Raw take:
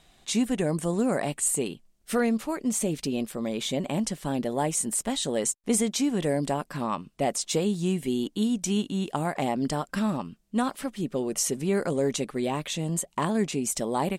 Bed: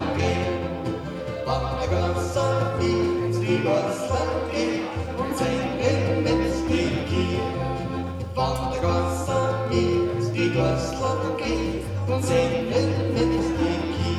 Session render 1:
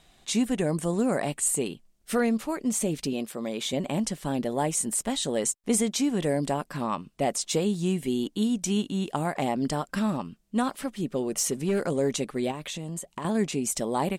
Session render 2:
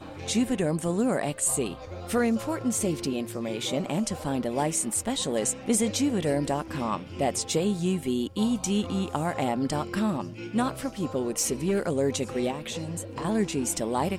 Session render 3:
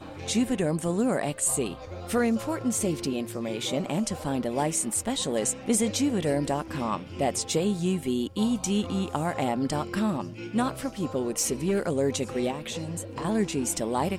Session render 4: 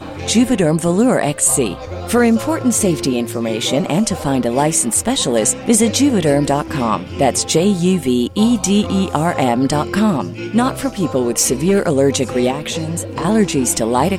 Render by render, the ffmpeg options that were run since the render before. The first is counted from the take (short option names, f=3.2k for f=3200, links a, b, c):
-filter_complex "[0:a]asettb=1/sr,asplit=3[a][b][c];[a]atrim=end=3.134[d];[b]atrim=start=3.13:end=3.73,asetpts=PTS-STARTPTS,afade=t=in:d=0.004:c=qsin,afade=t=out:st=0.596:d=0.004:c=qsin,highpass=f=220:p=1[e];[c]atrim=start=3.726[f];[d][e]acrossfade=d=0.004:c1=hsin:c2=qsin[g];[g][f]acrossfade=d=0.004:c1=qsin:c2=hsin,asettb=1/sr,asplit=3[h][i][j];[h]atrim=end=11.334[k];[i]atrim=start=11.33:end=11.87,asetpts=PTS-STARTPTS,afade=t=in:d=0.004:c=qsin,afade=t=out:st=0.536:d=0.004:c=qsin,volume=19.5dB,asoftclip=hard,volume=-19.5dB[l];[j]atrim=start=11.866[m];[k][l]acrossfade=d=0.004:c1=hsin:c2=qsin[n];[n][m]acrossfade=d=0.004:c1=qsin:c2=hsin,asettb=1/sr,asplit=3[o][p][q];[o]atrim=end=12.514[r];[p]atrim=start=12.51:end=13.25,asetpts=PTS-STARTPTS,afade=t=in:d=0.004:c=qsin,afade=t=out:st=0.736:d=0.004:c=qsin,acompressor=threshold=-31dB:ratio=5:attack=3.2:release=140:knee=1:detection=peak[s];[q]atrim=start=13.246[t];[r][s]acrossfade=d=0.004:c1=hsin:c2=qsin[u];[u][t]acrossfade=d=0.004:c1=qsin:c2=hsin"
-filter_complex "[1:a]volume=-16dB[a];[0:a][a]amix=inputs=2:normalize=0"
-af anull
-af "volume=12dB,alimiter=limit=-2dB:level=0:latency=1"